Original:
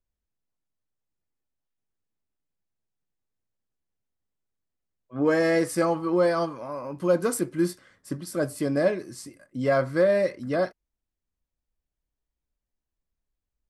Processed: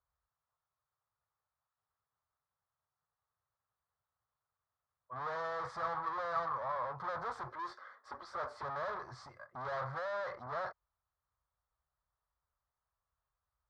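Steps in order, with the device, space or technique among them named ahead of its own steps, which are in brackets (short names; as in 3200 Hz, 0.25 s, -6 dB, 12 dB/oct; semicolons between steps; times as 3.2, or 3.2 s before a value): 7.51–8.63 elliptic high-pass 230 Hz; scooped metal amplifier (tube stage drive 40 dB, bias 0.25; speaker cabinet 110–3900 Hz, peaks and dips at 190 Hz -10 dB, 290 Hz -8 dB, 1500 Hz -6 dB, 2800 Hz -10 dB; passive tone stack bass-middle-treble 10-0-10); resonant high shelf 1800 Hz -11.5 dB, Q 3; gain +16 dB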